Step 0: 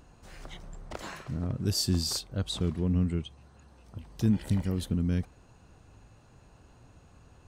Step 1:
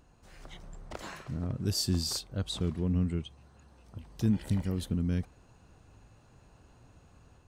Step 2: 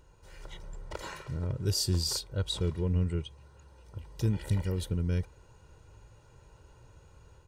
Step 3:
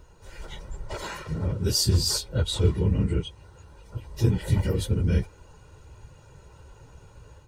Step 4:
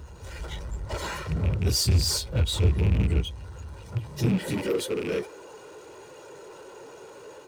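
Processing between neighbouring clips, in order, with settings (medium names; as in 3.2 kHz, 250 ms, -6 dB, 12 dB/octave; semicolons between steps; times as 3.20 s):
level rider gain up to 4 dB; trim -6 dB
comb 2.1 ms, depth 67%
phase randomisation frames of 50 ms; trim +6.5 dB
rattle on loud lows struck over -23 dBFS, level -26 dBFS; high-pass sweep 61 Hz -> 390 Hz, 3.62–4.78 s; power-law waveshaper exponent 0.7; trim -6 dB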